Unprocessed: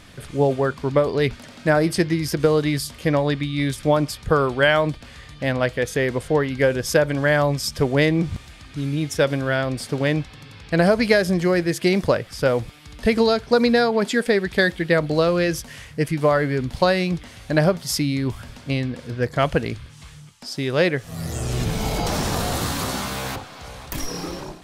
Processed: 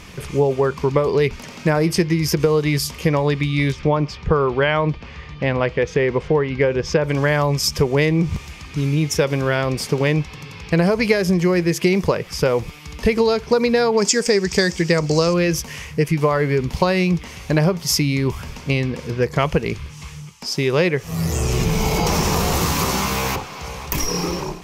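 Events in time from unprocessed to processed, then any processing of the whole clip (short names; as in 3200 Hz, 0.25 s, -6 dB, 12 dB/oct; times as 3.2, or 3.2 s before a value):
3.72–7.04 air absorption 180 m
13.97–15.34 band shelf 6300 Hz +15 dB 1 oct
whole clip: ripple EQ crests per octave 0.78, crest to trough 7 dB; compressor 3:1, threshold -21 dBFS; gain +6 dB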